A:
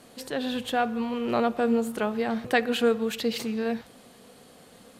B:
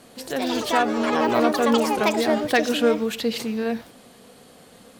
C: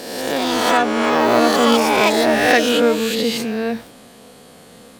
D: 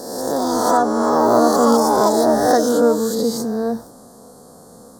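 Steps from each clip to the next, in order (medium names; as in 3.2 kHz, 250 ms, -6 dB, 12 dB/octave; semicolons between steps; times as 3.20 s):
ever faster or slower copies 158 ms, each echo +5 st, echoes 3; trim +3 dB
reverse spectral sustain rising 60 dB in 1.29 s; trim +2.5 dB
Chebyshev band-stop 1.1–5.7 kHz, order 2; trim +1.5 dB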